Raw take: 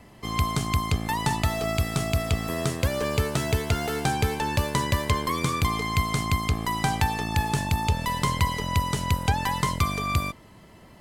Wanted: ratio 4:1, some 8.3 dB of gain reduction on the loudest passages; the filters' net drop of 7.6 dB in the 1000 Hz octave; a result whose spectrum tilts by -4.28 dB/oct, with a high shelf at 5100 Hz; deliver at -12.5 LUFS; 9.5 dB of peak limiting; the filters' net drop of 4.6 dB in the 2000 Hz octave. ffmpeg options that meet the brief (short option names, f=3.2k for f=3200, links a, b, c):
-af "equalizer=f=1k:t=o:g=-8,equalizer=f=2k:t=o:g=-4.5,highshelf=f=5.1k:g=6,acompressor=threshold=-29dB:ratio=4,volume=22dB,alimiter=limit=-0.5dB:level=0:latency=1"